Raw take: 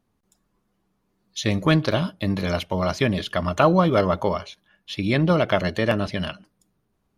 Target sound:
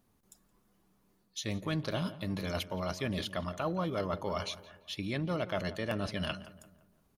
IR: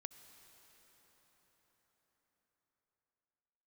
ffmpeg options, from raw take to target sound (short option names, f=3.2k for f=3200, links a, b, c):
-filter_complex "[0:a]areverse,acompressor=threshold=-34dB:ratio=4,areverse,highshelf=f=7.3k:g=9.5,asplit=2[a][b];[b]adelay=171,lowpass=f=1.9k:p=1,volume=-14.5dB,asplit=2[c][d];[d]adelay=171,lowpass=f=1.9k:p=1,volume=0.46,asplit=2[e][f];[f]adelay=171,lowpass=f=1.9k:p=1,volume=0.46,asplit=2[g][h];[h]adelay=171,lowpass=f=1.9k:p=1,volume=0.46[i];[a][c][e][g][i]amix=inputs=5:normalize=0"